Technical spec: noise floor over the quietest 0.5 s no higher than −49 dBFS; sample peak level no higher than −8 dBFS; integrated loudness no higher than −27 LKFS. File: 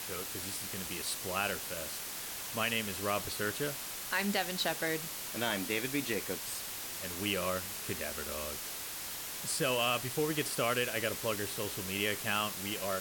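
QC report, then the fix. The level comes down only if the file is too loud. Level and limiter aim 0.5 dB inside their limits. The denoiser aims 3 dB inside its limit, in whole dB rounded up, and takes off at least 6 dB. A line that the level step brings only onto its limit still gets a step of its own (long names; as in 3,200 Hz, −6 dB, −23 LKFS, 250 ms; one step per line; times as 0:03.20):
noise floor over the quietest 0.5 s −41 dBFS: out of spec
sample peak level −17.5 dBFS: in spec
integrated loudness −34.0 LKFS: in spec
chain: broadband denoise 11 dB, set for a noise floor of −41 dBFS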